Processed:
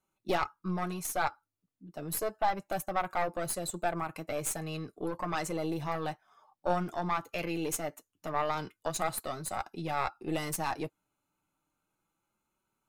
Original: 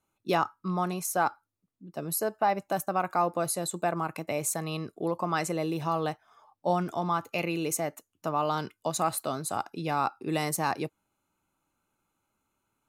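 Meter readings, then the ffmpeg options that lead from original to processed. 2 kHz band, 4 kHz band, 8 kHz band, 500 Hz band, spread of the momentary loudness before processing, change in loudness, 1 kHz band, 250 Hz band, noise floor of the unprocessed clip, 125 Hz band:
-2.5 dB, -3.5 dB, -4.0 dB, -4.0 dB, 5 LU, -4.0 dB, -4.5 dB, -4.5 dB, -83 dBFS, -4.5 dB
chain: -af "aeval=exprs='0.237*(cos(1*acos(clip(val(0)/0.237,-1,1)))-cos(1*PI/2))+0.0422*(cos(4*acos(clip(val(0)/0.237,-1,1)))-cos(4*PI/2))':c=same,flanger=delay=5.3:depth=1.5:regen=-41:speed=0.31:shape=sinusoidal"

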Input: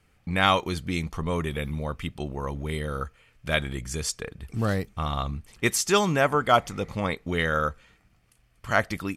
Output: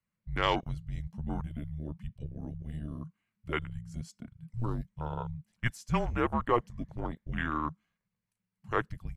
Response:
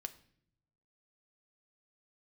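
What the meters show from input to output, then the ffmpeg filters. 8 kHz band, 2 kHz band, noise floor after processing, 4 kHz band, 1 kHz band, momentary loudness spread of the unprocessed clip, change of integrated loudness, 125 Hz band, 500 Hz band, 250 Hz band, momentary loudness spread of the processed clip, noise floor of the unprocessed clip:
-23.5 dB, -10.5 dB, under -85 dBFS, -12.0 dB, -8.0 dB, 12 LU, -8.5 dB, -5.5 dB, -9.5 dB, -6.5 dB, 13 LU, -64 dBFS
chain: -af "afwtdn=0.0398,afreqshift=-230,volume=-7dB"

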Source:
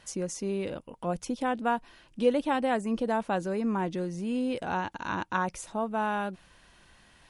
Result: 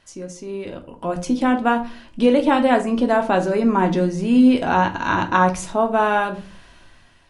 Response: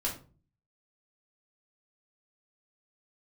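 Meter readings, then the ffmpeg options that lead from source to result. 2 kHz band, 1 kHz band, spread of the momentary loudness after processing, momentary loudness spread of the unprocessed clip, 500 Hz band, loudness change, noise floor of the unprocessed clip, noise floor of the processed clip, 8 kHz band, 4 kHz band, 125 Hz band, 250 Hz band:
+11.5 dB, +11.0 dB, 16 LU, 7 LU, +10.0 dB, +12.0 dB, -59 dBFS, -50 dBFS, +5.0 dB, +10.5 dB, +10.5 dB, +13.0 dB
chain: -filter_complex "[0:a]dynaudnorm=f=300:g=7:m=15dB,asplit=2[a][b];[1:a]atrim=start_sample=2205,lowpass=8.2k[c];[b][c]afir=irnorm=-1:irlink=0,volume=-4dB[d];[a][d]amix=inputs=2:normalize=0,volume=-5.5dB"

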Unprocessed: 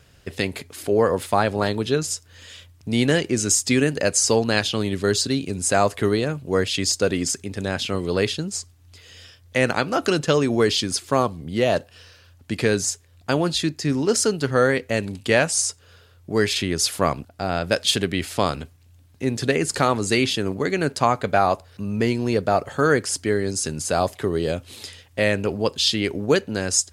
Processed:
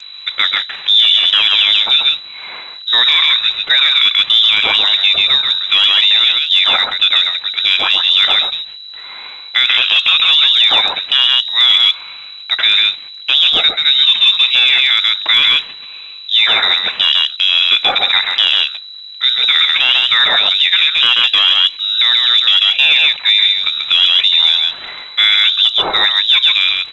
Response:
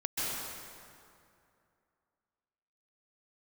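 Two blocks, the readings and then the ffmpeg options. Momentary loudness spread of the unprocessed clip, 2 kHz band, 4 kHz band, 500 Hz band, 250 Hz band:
8 LU, +12.0 dB, +22.0 dB, -13.0 dB, under -15 dB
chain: -filter_complex "[0:a]aemphasis=mode=reproduction:type=75fm,acrossover=split=530|2800[a][b][c];[b]aeval=exprs='0.447*(cos(1*acos(clip(val(0)/0.447,-1,1)))-cos(1*PI/2))+0.224*(cos(5*acos(clip(val(0)/0.447,-1,1)))-cos(5*PI/2))':c=same[d];[c]asoftclip=type=tanh:threshold=-25.5dB[e];[a][d][e]amix=inputs=3:normalize=0,aeval=exprs='val(0)+0.01*(sin(2*PI*50*n/s)+sin(2*PI*2*50*n/s)/2+sin(2*PI*3*50*n/s)/3+sin(2*PI*4*50*n/s)/4+sin(2*PI*5*50*n/s)/5)':c=same,asplit=2[f][g];[g]aecho=0:1:135:0.531[h];[f][h]amix=inputs=2:normalize=0,lowpass=f=3.4k:t=q:w=0.5098,lowpass=f=3.4k:t=q:w=0.6013,lowpass=f=3.4k:t=q:w=0.9,lowpass=f=3.4k:t=q:w=2.563,afreqshift=-4000,alimiter=level_in=9dB:limit=-1dB:release=50:level=0:latency=1,volume=-1dB" -ar 16000 -c:a g722

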